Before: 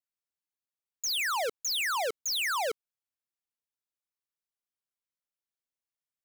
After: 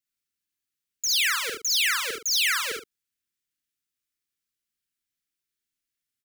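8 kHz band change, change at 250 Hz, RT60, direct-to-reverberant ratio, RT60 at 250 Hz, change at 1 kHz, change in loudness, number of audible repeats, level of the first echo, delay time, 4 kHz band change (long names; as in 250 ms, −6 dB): +7.5 dB, +6.0 dB, no reverb audible, no reverb audible, no reverb audible, −2.5 dB, +6.5 dB, 2, −3.0 dB, 50 ms, +7.5 dB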